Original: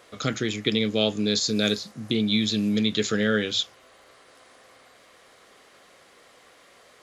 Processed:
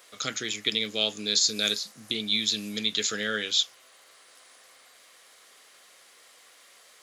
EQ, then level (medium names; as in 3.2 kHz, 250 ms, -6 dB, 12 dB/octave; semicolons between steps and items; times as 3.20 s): tilt EQ +3.5 dB/octave; -5.0 dB